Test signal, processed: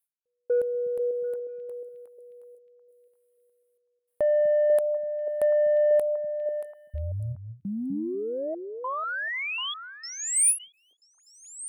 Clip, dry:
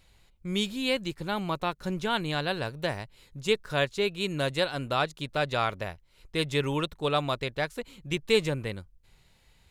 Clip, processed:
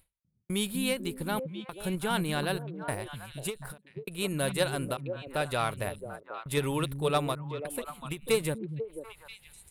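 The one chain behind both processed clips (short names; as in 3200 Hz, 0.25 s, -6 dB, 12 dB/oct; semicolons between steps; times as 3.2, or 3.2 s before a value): resonant high shelf 7900 Hz +10 dB, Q 3; step gate "xx...xxxxxxx" 151 bpm -60 dB; in parallel at -1 dB: level quantiser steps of 12 dB; on the sum: soft clip -12 dBFS; delay with a stepping band-pass 0.246 s, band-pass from 160 Hz, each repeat 1.4 oct, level -3 dB; ending taper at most 240 dB/s; gain -3.5 dB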